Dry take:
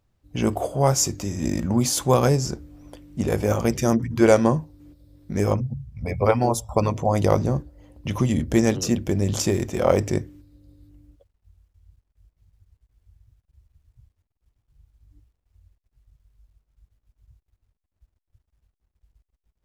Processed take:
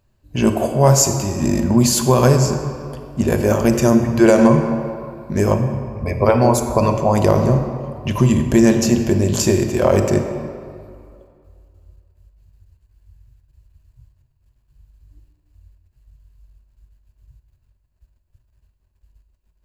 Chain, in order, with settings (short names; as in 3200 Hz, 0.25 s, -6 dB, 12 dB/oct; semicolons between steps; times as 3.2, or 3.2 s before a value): ripple EQ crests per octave 1.4, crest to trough 6 dB; reverb RT60 2.3 s, pre-delay 25 ms, DRR 6 dB; maximiser +6 dB; gain -1 dB